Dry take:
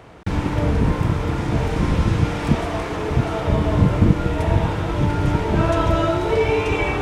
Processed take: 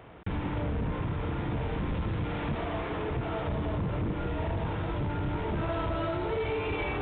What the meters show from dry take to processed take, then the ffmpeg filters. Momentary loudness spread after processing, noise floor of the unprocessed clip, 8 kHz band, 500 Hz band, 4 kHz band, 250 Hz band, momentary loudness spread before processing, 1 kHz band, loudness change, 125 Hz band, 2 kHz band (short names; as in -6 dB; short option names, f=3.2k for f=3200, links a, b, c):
2 LU, -26 dBFS, under -40 dB, -11.0 dB, -11.5 dB, -12.0 dB, 5 LU, -10.5 dB, -12.0 dB, -12.5 dB, -10.5 dB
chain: -af "aresample=8000,asoftclip=type=tanh:threshold=-16.5dB,aresample=44100,acompressor=threshold=-22dB:ratio=6,volume=-6dB"